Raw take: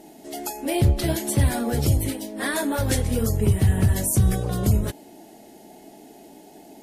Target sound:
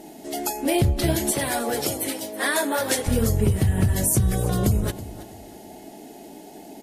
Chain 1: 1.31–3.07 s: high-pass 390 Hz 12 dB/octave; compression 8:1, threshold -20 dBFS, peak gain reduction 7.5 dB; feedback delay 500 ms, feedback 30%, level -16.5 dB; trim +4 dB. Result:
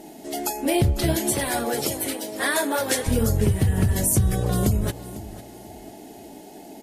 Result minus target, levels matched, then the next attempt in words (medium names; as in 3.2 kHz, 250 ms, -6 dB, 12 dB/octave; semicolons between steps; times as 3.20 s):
echo 175 ms late
1.31–3.07 s: high-pass 390 Hz 12 dB/octave; compression 8:1, threshold -20 dBFS, peak gain reduction 7.5 dB; feedback delay 325 ms, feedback 30%, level -16.5 dB; trim +4 dB